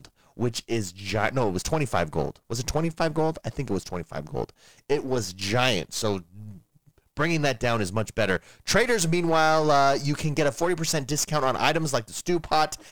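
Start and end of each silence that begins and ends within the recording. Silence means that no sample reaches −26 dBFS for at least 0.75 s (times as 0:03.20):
0:06.18–0:07.17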